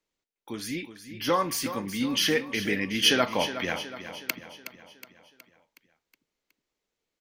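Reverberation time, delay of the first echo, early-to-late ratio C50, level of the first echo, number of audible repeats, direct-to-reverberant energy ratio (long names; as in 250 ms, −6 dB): no reverb audible, 368 ms, no reverb audible, −11.5 dB, 5, no reverb audible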